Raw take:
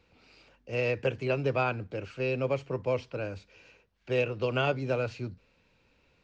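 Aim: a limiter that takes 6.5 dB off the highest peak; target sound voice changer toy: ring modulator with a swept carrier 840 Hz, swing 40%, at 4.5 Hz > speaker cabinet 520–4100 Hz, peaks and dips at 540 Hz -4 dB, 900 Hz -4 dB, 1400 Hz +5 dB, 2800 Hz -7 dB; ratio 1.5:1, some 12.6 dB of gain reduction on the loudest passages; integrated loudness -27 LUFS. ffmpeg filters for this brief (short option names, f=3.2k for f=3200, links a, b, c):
-af "acompressor=threshold=-60dB:ratio=1.5,alimiter=level_in=10dB:limit=-24dB:level=0:latency=1,volume=-10dB,aeval=exprs='val(0)*sin(2*PI*840*n/s+840*0.4/4.5*sin(2*PI*4.5*n/s))':c=same,highpass=520,equalizer=f=540:t=q:w=4:g=-4,equalizer=f=900:t=q:w=4:g=-4,equalizer=f=1.4k:t=q:w=4:g=5,equalizer=f=2.8k:t=q:w=4:g=-7,lowpass=f=4.1k:w=0.5412,lowpass=f=4.1k:w=1.3066,volume=21.5dB"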